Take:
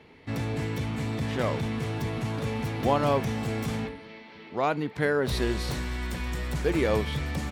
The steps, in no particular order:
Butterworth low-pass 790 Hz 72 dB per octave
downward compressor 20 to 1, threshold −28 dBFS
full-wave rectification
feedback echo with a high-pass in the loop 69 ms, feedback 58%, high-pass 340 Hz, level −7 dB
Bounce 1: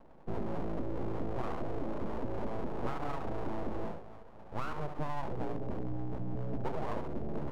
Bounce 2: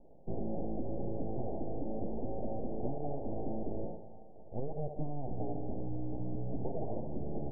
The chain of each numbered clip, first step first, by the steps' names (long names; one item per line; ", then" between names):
feedback echo with a high-pass in the loop, then downward compressor, then Butterworth low-pass, then full-wave rectification
full-wave rectification, then feedback echo with a high-pass in the loop, then downward compressor, then Butterworth low-pass